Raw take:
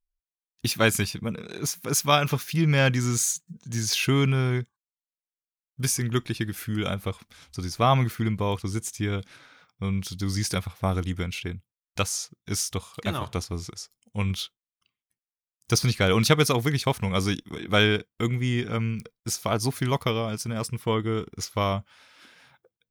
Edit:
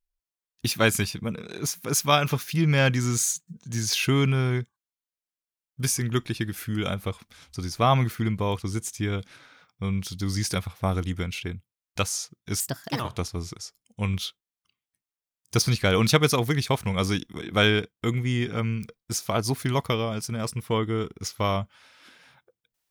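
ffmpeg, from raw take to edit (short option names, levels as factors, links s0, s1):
-filter_complex "[0:a]asplit=3[s0][s1][s2];[s0]atrim=end=12.604[s3];[s1]atrim=start=12.6:end=13.16,asetpts=PTS-STARTPTS,asetrate=62622,aresample=44100[s4];[s2]atrim=start=13.156[s5];[s3][s4]acrossfade=d=0.004:c1=hsin:c2=hsin[s6];[s6][s5]acrossfade=d=0.004:c1=hsin:c2=hsin"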